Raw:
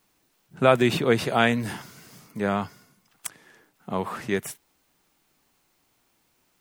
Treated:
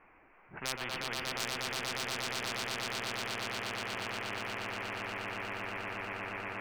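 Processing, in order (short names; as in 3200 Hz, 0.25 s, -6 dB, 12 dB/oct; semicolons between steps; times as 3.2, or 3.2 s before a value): elliptic low-pass 2400 Hz, stop band 40 dB; bell 160 Hz -11 dB 1.9 oct; de-hum 79.14 Hz, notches 5; overloaded stage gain 10.5 dB; on a send: swelling echo 0.119 s, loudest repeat 8, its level -5.5 dB; on the sum: spectral compressor 10:1; gain -7.5 dB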